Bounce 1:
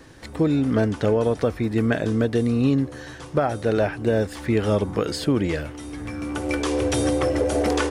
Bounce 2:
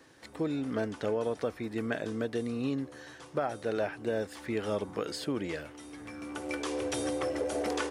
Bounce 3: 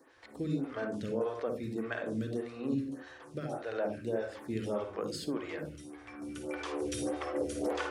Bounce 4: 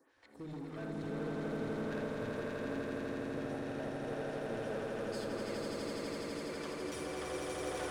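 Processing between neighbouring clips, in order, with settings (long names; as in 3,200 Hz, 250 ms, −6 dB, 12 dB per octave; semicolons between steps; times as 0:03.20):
high-pass filter 310 Hz 6 dB per octave; level −8.5 dB
on a send at −4 dB: convolution reverb RT60 0.35 s, pre-delay 47 ms; on the sum: phaser with staggered stages 1.7 Hz; level −2 dB
hard clipping −33 dBFS, distortion −10 dB; echo that builds up and dies away 83 ms, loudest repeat 8, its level −3 dB; level −8.5 dB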